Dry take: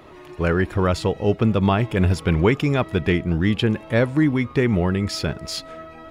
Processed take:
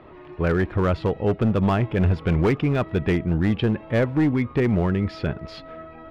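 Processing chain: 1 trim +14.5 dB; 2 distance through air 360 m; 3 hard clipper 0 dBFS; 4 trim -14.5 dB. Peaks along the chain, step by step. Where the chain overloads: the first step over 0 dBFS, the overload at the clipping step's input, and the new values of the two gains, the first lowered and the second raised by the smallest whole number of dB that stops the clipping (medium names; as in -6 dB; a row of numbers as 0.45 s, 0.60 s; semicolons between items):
+9.5 dBFS, +9.0 dBFS, 0.0 dBFS, -14.5 dBFS; step 1, 9.0 dB; step 1 +5.5 dB, step 4 -5.5 dB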